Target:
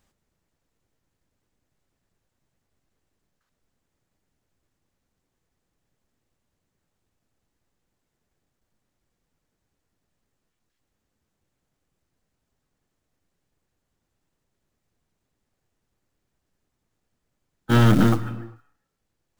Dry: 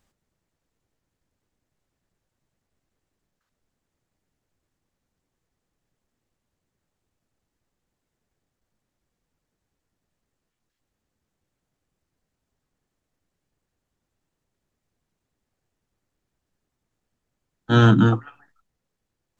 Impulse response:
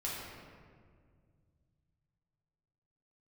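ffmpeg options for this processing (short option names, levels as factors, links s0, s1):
-filter_complex "[0:a]aeval=exprs='(tanh(5.62*val(0)+0.5)-tanh(0.5))/5.62':c=same,acrusher=bits=5:mode=log:mix=0:aa=0.000001,asplit=2[s0][s1];[1:a]atrim=start_sample=2205,afade=t=out:st=0.35:d=0.01,atrim=end_sample=15876,adelay=109[s2];[s1][s2]afir=irnorm=-1:irlink=0,volume=0.119[s3];[s0][s3]amix=inputs=2:normalize=0,volume=1.5"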